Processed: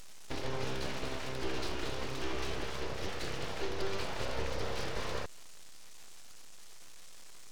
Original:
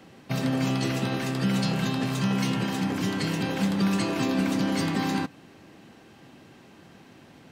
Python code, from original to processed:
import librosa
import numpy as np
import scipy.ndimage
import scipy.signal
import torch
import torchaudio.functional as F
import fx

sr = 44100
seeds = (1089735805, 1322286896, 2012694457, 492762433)

y = fx.delta_mod(x, sr, bps=32000, step_db=-31.5)
y = np.abs(y)
y = y * librosa.db_to_amplitude(-7.5)